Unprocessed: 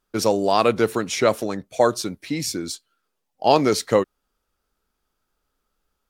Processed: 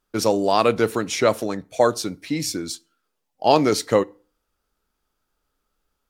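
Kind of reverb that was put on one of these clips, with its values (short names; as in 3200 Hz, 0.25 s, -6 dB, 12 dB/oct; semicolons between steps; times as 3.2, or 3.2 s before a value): FDN reverb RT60 0.39 s, low-frequency decay 1.05×, high-frequency decay 0.75×, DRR 18 dB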